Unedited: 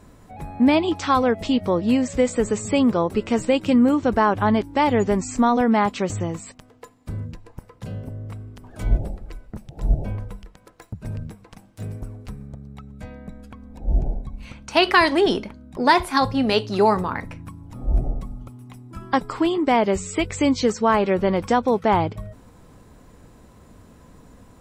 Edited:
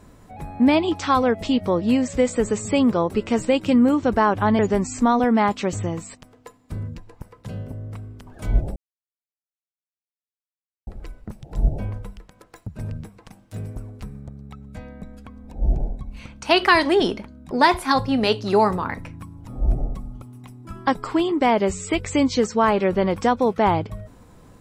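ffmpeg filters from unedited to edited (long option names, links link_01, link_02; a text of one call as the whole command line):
ffmpeg -i in.wav -filter_complex "[0:a]asplit=3[link_01][link_02][link_03];[link_01]atrim=end=4.592[link_04];[link_02]atrim=start=4.958:end=9.13,asetpts=PTS-STARTPTS,afade=type=out:start_time=4.168:duration=0.004:curve=hsin,apad=pad_dur=2.11[link_05];[link_03]atrim=start=9.13,asetpts=PTS-STARTPTS,afade=type=in:duration=0.004:curve=hsin[link_06];[link_05][link_06]concat=n=2:v=0:a=1[link_07];[link_04][link_07]acrossfade=duration=0.004:curve1=hsin:curve2=hsin" out.wav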